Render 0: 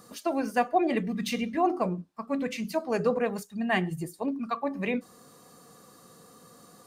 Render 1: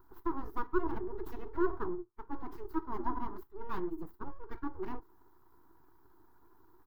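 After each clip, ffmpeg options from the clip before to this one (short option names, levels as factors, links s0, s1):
-af "aeval=exprs='abs(val(0))':c=same,firequalizer=gain_entry='entry(110,0);entry(220,-7);entry(350,9);entry(550,-20);entry(950,2);entry(2400,-24);entry(4000,-20);entry(9100,-28);entry(14000,-5)':delay=0.05:min_phase=1,volume=0.596"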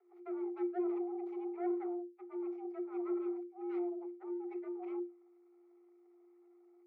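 -filter_complex "[0:a]afreqshift=350,asplit=3[s0][s1][s2];[s0]bandpass=f=300:t=q:w=8,volume=1[s3];[s1]bandpass=f=870:t=q:w=8,volume=0.501[s4];[s2]bandpass=f=2240:t=q:w=8,volume=0.355[s5];[s3][s4][s5]amix=inputs=3:normalize=0,volume=1.88"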